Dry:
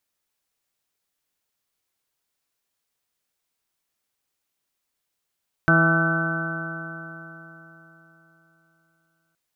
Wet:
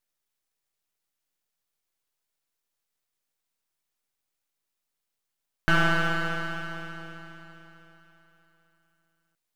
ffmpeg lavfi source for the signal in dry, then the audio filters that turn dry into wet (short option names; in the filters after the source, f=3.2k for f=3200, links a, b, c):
-f lavfi -i "aevalsrc='0.126*pow(10,-3*t/3.71)*sin(2*PI*163.07*t)+0.075*pow(10,-3*t/3.71)*sin(2*PI*326.58*t)+0.02*pow(10,-3*t/3.71)*sin(2*PI*490.95*t)+0.0631*pow(10,-3*t/3.71)*sin(2*PI*656.63*t)+0.0282*pow(10,-3*t/3.71)*sin(2*PI*824.02*t)+0.0133*pow(10,-3*t/3.71)*sin(2*PI*993.54*t)+0.0447*pow(10,-3*t/3.71)*sin(2*PI*1165.61*t)+0.0708*pow(10,-3*t/3.71)*sin(2*PI*1340.62*t)+0.158*pow(10,-3*t/3.71)*sin(2*PI*1518.96*t)':d=3.67:s=44100"
-af "aeval=exprs='max(val(0),0)':c=same"